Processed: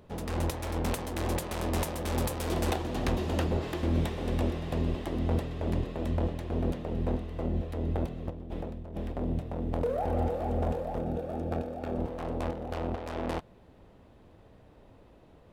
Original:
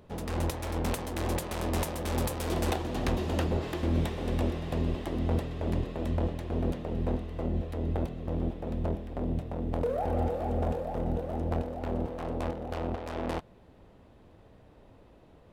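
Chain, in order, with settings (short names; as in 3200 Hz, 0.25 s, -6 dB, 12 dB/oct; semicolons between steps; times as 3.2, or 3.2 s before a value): 8.3–9.12 negative-ratio compressor -38 dBFS, ratio -1; 10.99–11.98 notch comb 1000 Hz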